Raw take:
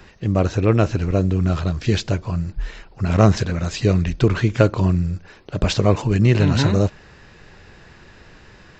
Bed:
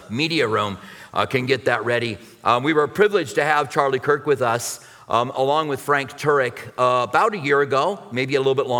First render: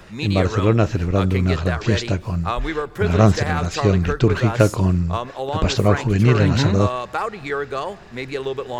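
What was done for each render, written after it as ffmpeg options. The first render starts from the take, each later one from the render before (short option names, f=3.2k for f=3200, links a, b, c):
-filter_complex "[1:a]volume=-7dB[a];[0:a][a]amix=inputs=2:normalize=0"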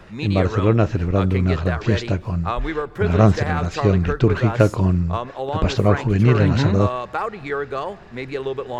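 -af "highshelf=f=4.4k:g=-10.5"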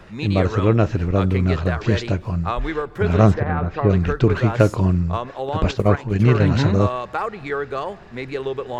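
-filter_complex "[0:a]asplit=3[a][b][c];[a]afade=t=out:st=3.33:d=0.02[d];[b]lowpass=1.7k,afade=t=in:st=3.33:d=0.02,afade=t=out:st=3.89:d=0.02[e];[c]afade=t=in:st=3.89:d=0.02[f];[d][e][f]amix=inputs=3:normalize=0,asettb=1/sr,asplit=3[g][h][i];[g]atrim=end=5.714[j];[h]atrim=start=5.71:end=6.49,asetpts=PTS-STARTPTS,afade=t=in:d=0.004:c=qsin,afade=t=out:st=0.776:d=0.004:c=qsin,agate=range=-8dB:threshold=-18dB:ratio=16:release=100:detection=peak[k];[i]atrim=start=6.486[l];[j][k]acrossfade=d=0.004:c1=hsin:c2=qsin[m];[m][l]acrossfade=d=0.004:c1=qsin:c2=hsin"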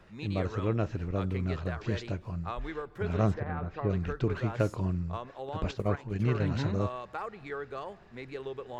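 -af "volume=-13dB"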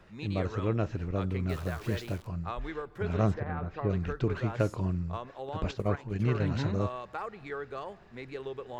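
-filter_complex "[0:a]asettb=1/sr,asplit=3[a][b][c];[a]atrim=end=1.494[d];[b]atrim=start=1.49:end=2.27,asetpts=PTS-STARTPTS,afade=t=in:d=0.004:c=qsin,afade=t=out:st=0.776:d=0.004:c=qsin,acrusher=bits=9:dc=4:mix=0:aa=0.000001[e];[c]atrim=start=2.266[f];[d][e]acrossfade=d=0.004:c1=hsin:c2=qsin[g];[g][f]acrossfade=d=0.004:c1=qsin:c2=hsin"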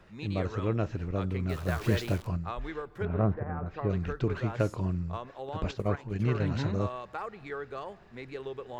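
-filter_complex "[0:a]asettb=1/sr,asplit=3[a][b][c];[a]atrim=end=1.684[d];[b]atrim=start=1.68:end=2.37,asetpts=PTS-STARTPTS,afade=t=in:d=0.004:c=qsin,afade=t=out:st=0.686:d=0.004:c=qsin,acontrast=29[e];[c]atrim=start=2.366[f];[d][e]acrossfade=d=0.004:c1=hsin:c2=qsin[g];[g][f]acrossfade=d=0.004:c1=qsin:c2=hsin,asettb=1/sr,asplit=3[h][i][j];[h]atrim=end=3.054[k];[i]atrim=start=3.05:end=3.66,asetpts=PTS-STARTPTS,afade=t=in:d=0.004:c=qsin,afade=t=out:st=0.606:d=0.004:c=qsin,lowpass=1.5k[l];[j]atrim=start=3.656[m];[k][l]acrossfade=d=0.004:c1=hsin:c2=qsin[n];[n][m]acrossfade=d=0.004:c1=qsin:c2=hsin"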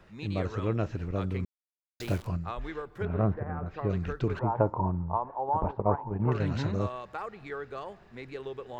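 -filter_complex "[0:a]asettb=1/sr,asplit=3[a][b][c];[a]atrim=end=4.394[d];[b]atrim=start=4.39:end=6.32,asetpts=PTS-STARTPTS,afade=t=in:d=0.004:c=qsin,afade=t=out:st=1.926:d=0.004:c=qsin,lowpass=f=900:t=q:w=8[e];[c]atrim=start=6.316[f];[d][e]acrossfade=d=0.004:c1=hsin:c2=qsin[g];[g][f]acrossfade=d=0.004:c1=qsin:c2=hsin,asplit=3[h][i][j];[h]atrim=end=1.45,asetpts=PTS-STARTPTS,afade=t=out:st=1.446:d=0.004:c=hsin[k];[i]atrim=start=1.45:end=2,asetpts=PTS-STARTPTS,volume=0[l];[j]atrim=start=2,asetpts=PTS-STARTPTS,afade=t=in:d=0.004:c=hsin[m];[k][l][m]concat=n=3:v=0:a=1"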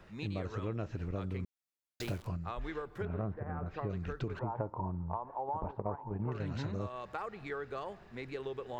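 -af "acompressor=threshold=-35dB:ratio=4"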